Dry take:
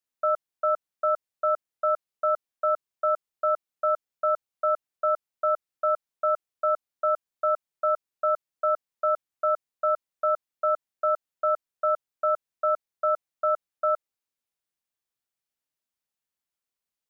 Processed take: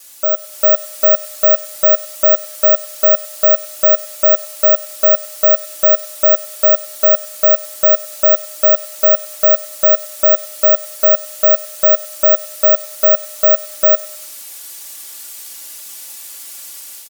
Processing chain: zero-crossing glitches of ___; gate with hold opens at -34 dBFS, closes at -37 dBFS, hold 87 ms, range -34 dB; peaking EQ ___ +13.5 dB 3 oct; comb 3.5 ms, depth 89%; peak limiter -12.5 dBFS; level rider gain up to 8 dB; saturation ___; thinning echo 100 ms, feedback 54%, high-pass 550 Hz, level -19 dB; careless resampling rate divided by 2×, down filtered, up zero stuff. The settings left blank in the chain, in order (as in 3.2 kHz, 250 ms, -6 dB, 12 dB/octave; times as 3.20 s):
-34 dBFS, 320 Hz, -8 dBFS